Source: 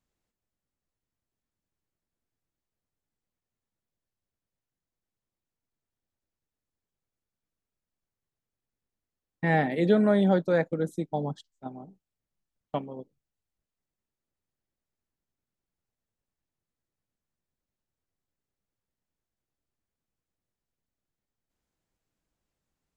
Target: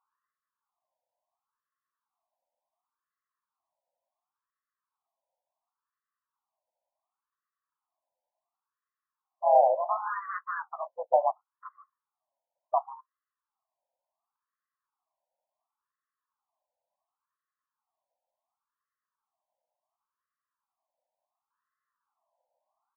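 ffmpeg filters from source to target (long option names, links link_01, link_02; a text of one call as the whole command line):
ffmpeg -i in.wav -filter_complex "[0:a]asoftclip=type=tanh:threshold=-19.5dB,asplit=2[link_01][link_02];[link_02]asetrate=37084,aresample=44100,atempo=1.18921,volume=-7dB[link_03];[link_01][link_03]amix=inputs=2:normalize=0,highpass=440,equalizer=frequency=470:width_type=q:width=4:gain=6,equalizer=frequency=670:width_type=q:width=4:gain=6,equalizer=frequency=1100:width_type=q:width=4:gain=5,equalizer=frequency=1500:width_type=q:width=4:gain=-5,equalizer=frequency=2200:width_type=q:width=4:gain=-7,lowpass=frequency=2500:width=0.5412,lowpass=frequency=2500:width=1.3066,alimiter=level_in=17.5dB:limit=-1dB:release=50:level=0:latency=1,afftfilt=real='re*between(b*sr/1024,700*pow(1500/700,0.5+0.5*sin(2*PI*0.7*pts/sr))/1.41,700*pow(1500/700,0.5+0.5*sin(2*PI*0.7*pts/sr))*1.41)':imag='im*between(b*sr/1024,700*pow(1500/700,0.5+0.5*sin(2*PI*0.7*pts/sr))/1.41,700*pow(1500/700,0.5+0.5*sin(2*PI*0.7*pts/sr))*1.41)':win_size=1024:overlap=0.75,volume=-8dB" out.wav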